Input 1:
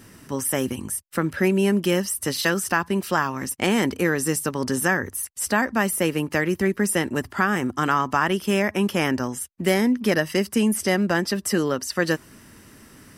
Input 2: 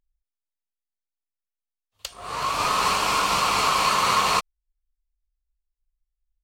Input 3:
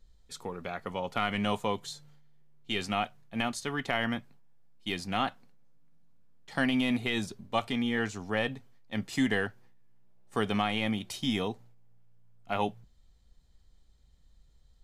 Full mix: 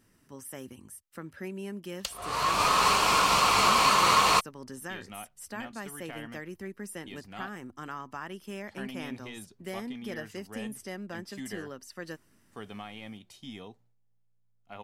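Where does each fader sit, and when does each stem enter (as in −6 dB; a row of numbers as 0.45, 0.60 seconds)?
−18.5, −1.0, −13.5 decibels; 0.00, 0.00, 2.20 seconds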